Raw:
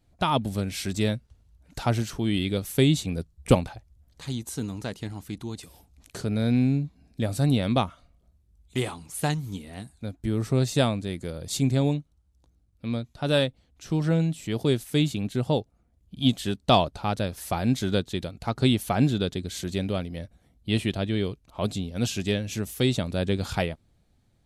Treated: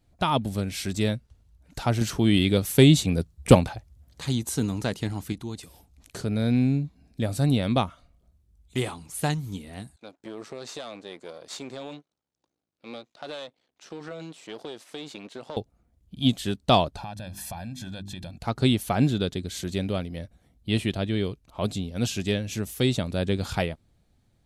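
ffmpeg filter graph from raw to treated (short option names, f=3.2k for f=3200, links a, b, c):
-filter_complex "[0:a]asettb=1/sr,asplit=3[a][b][c];[a]atrim=end=2.014[d];[b]atrim=start=2.01:end=5.33,asetpts=PTS-STARTPTS,afade=t=in:d=0.004:c=qsin,afade=t=out:st=3.316:d=0.004:c=qsin,highpass=47,acontrast=33[e];[c]atrim=start=5.326[f];[d][e]acrossfade=d=0.004:c1=hsin:c2=qsin[g];[g][f]acrossfade=d=0.004:c1=qsin:c2=hsin,asettb=1/sr,asplit=3[h][i][j];[h]atrim=end=9.964[k];[i]atrim=start=9.96:end=15.57,asetpts=PTS-STARTPTS,afade=t=in:d=0.004:c=qsin,afade=t=out:st=5.606:d=0.004:c=qsin,aeval=exprs='if(lt(val(0),0),0.251*val(0),val(0))':c=same,highpass=390,lowpass=6.6k,acompressor=threshold=-32dB:ratio=10:attack=3.2:release=140:knee=1:detection=peak[l];[j]atrim=start=15.566[m];[k][l]acrossfade=d=0.004:c1=hsin:c2=qsin[n];[n][m]acrossfade=d=0.004:c1=qsin:c2=hsin,asettb=1/sr,asplit=3[o][p][q];[o]atrim=end=16.974[r];[p]atrim=start=16.97:end=18.38,asetpts=PTS-STARTPTS,afade=t=in:d=0.004:c=qsin,afade=t=out:st=1.406:d=0.004:c=qsin,bandreject=f=50:t=h:w=6,bandreject=f=100:t=h:w=6,bandreject=f=150:t=h:w=6,bandreject=f=200:t=h:w=6,bandreject=f=250:t=h:w=6,bandreject=f=300:t=h:w=6,bandreject=f=350:t=h:w=6,bandreject=f=400:t=h:w=6,aecho=1:1:1.2:0.81,atrim=end_sample=62181,acompressor=threshold=-33dB:ratio=8:attack=3.2:release=140:knee=1:detection=peak[s];[q]atrim=start=18.376[t];[r][s]acrossfade=d=0.004:c1=hsin:c2=qsin[u];[u][t]acrossfade=d=0.004:c1=qsin:c2=hsin"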